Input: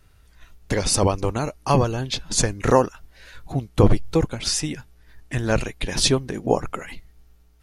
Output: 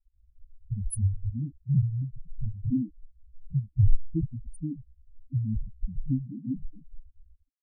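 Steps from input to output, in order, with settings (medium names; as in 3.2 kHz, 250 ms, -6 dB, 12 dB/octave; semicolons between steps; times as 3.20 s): word length cut 8-bit, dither none; elliptic band-stop 300–9700 Hz; loudest bins only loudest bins 2; trim +1 dB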